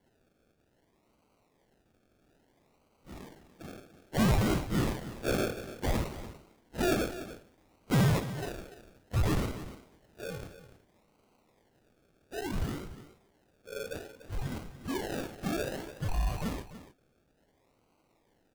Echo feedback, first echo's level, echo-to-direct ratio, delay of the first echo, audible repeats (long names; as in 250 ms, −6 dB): repeats not evenly spaced, −16.5 dB, −12.0 dB, 53 ms, 2